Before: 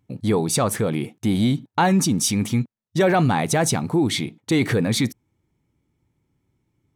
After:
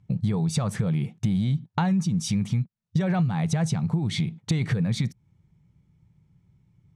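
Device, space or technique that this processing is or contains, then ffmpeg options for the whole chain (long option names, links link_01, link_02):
jukebox: -af "lowpass=7200,lowshelf=frequency=220:width_type=q:width=3:gain=7.5,acompressor=threshold=-22dB:ratio=6"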